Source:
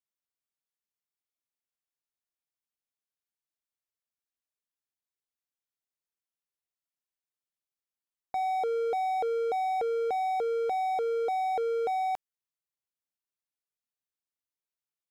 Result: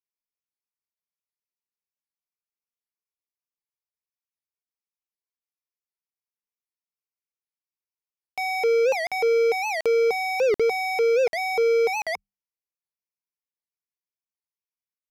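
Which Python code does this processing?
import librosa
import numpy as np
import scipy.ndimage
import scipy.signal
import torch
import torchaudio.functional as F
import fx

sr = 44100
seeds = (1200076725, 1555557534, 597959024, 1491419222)

y = fx.hum_notches(x, sr, base_hz=50, count=4)
y = fx.leveller(y, sr, passes=5)
y = fx.ripple_eq(y, sr, per_octave=0.83, db=14)
y = fx.buffer_crackle(y, sr, first_s=0.93, period_s=0.74, block=2048, kind='zero')
y = fx.record_warp(y, sr, rpm=78.0, depth_cents=250.0)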